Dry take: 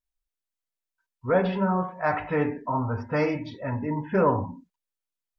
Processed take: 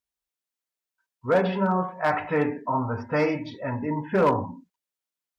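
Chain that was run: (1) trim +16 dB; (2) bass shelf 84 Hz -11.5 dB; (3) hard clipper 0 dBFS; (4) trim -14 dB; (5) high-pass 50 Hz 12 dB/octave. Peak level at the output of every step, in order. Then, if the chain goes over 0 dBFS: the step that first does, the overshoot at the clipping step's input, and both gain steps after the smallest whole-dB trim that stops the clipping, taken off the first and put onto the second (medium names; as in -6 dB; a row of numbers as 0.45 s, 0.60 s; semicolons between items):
+6.5 dBFS, +5.5 dBFS, 0.0 dBFS, -14.0 dBFS, -12.0 dBFS; step 1, 5.5 dB; step 1 +10 dB, step 4 -8 dB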